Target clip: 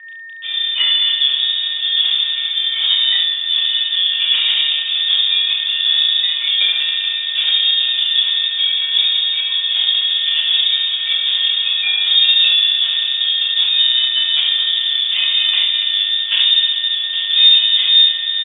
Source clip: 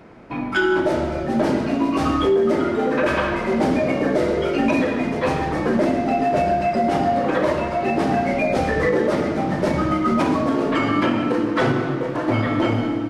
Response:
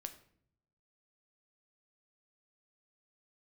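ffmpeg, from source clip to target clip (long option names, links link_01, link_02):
-filter_complex "[0:a]highpass=frequency=50:width=0.5412,highpass=frequency=50:width=1.3066,bandreject=frequency=143.8:width_type=h:width=4,bandreject=frequency=287.6:width_type=h:width=4,bandreject=frequency=431.4:width_type=h:width=4,bandreject=frequency=575.2:width_type=h:width=4,bandreject=frequency=719:width_type=h:width=4,bandreject=frequency=862.8:width_type=h:width=4,bandreject=frequency=1006.6:width_type=h:width=4,bandreject=frequency=1150.4:width_type=h:width=4,asubboost=boost=12:cutoff=63,acrusher=bits=5:mix=0:aa=0.000001,asetrate=31311,aresample=44100,adynamicsmooth=sensitivity=2:basefreq=1400,aeval=exprs='val(0)+0.01*sin(2*PI*2500*n/s)':channel_layout=same,asetrate=33038,aresample=44100,atempo=1.33484,aecho=1:1:31|69:0.531|0.447,asplit=2[link_01][link_02];[1:a]atrim=start_sample=2205[link_03];[link_02][link_03]afir=irnorm=-1:irlink=0,volume=-5.5dB[link_04];[link_01][link_04]amix=inputs=2:normalize=0,lowpass=frequency=3100:width_type=q:width=0.5098,lowpass=frequency=3100:width_type=q:width=0.6013,lowpass=frequency=3100:width_type=q:width=0.9,lowpass=frequency=3100:width_type=q:width=2.563,afreqshift=-3700,volume=1dB"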